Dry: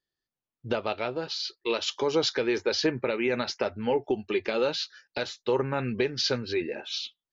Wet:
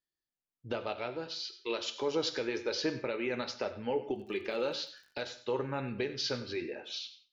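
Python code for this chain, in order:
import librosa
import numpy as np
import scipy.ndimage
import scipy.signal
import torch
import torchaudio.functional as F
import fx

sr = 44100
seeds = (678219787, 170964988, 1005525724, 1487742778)

p1 = fx.rev_gated(x, sr, seeds[0], gate_ms=220, shape='falling', drr_db=9.5)
p2 = fx.dmg_crackle(p1, sr, seeds[1], per_s=48.0, level_db=-43.0, at=(4.15, 5.23), fade=0.02)
p3 = p2 + fx.echo_single(p2, sr, ms=96, db=-16.0, dry=0)
y = F.gain(torch.from_numpy(p3), -7.5).numpy()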